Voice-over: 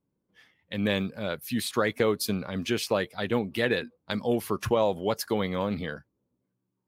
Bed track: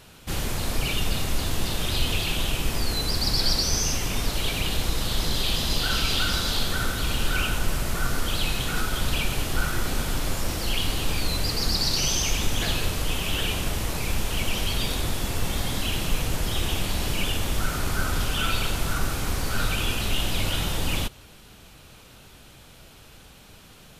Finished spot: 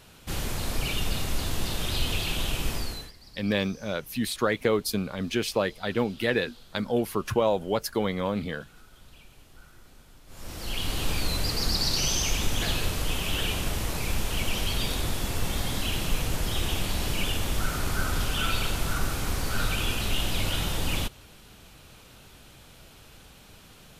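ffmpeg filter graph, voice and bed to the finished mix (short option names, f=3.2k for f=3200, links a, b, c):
-filter_complex "[0:a]adelay=2650,volume=0.5dB[a];[1:a]volume=22dB,afade=t=out:st=2.7:d=0.42:silence=0.0630957,afade=t=in:st=10.27:d=0.77:silence=0.0562341[b];[a][b]amix=inputs=2:normalize=0"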